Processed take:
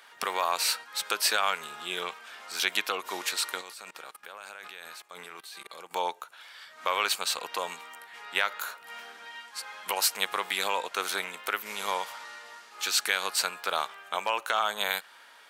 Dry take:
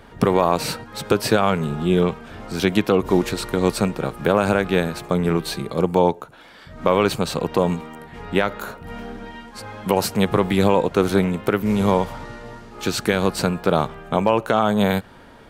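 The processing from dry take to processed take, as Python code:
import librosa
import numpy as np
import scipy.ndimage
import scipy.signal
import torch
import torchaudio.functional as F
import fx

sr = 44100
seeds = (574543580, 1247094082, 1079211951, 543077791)

y = scipy.signal.sosfilt(scipy.signal.butter(2, 1200.0, 'highpass', fs=sr, output='sos'), x)
y = fx.high_shelf(y, sr, hz=2800.0, db=5.0)
y = fx.level_steps(y, sr, step_db=21, at=(3.61, 5.91))
y = y * librosa.db_to_amplitude(-2.5)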